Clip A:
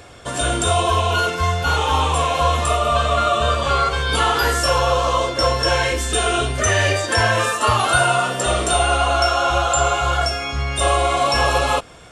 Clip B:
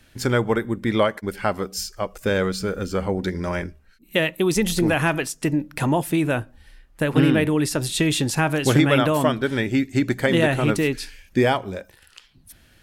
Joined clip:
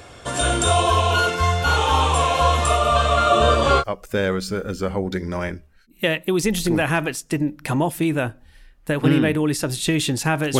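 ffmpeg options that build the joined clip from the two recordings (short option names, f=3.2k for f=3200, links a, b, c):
-filter_complex "[0:a]asettb=1/sr,asplit=3[a][b][c];[a]atrim=end=3.304[d];[b]atrim=start=3.3:end=3.84,asetpts=PTS-STARTPTS,afade=t=in:d=0.004:c=qsin,afade=t=out:st=0.536:d=0.004:c=qsin,equalizer=f=310:w=0.81:g=8.5[e];[c]atrim=start=3.836[f];[d][e]acrossfade=d=0.004:c1=hsin:c2=qsin[g];[g][f]acrossfade=d=0.004:c1=qsin:c2=hsin,apad=whole_dur=10.59,atrim=end=10.59,atrim=end=3.84,asetpts=PTS-STARTPTS[h];[1:a]atrim=start=1.9:end=8.71,asetpts=PTS-STARTPTS[i];[h][i]acrossfade=d=0.06:c1=tri:c2=tri"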